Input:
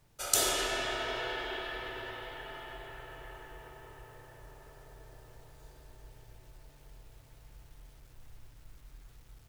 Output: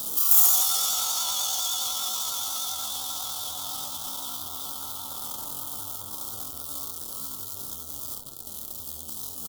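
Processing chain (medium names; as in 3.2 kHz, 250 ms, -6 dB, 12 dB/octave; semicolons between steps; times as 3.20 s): jump at every zero crossing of -29.5 dBFS; Chebyshev band-stop 670–1600 Hz, order 3; early reflections 58 ms -6 dB, 76 ms -9.5 dB; valve stage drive 21 dB, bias 0.45; on a send: band-passed feedback delay 820 ms, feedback 63%, band-pass 350 Hz, level -12 dB; on the sum: pitch shift +12 st; vibrato 10 Hz 45 cents; RIAA curve recording; trim -1.5 dB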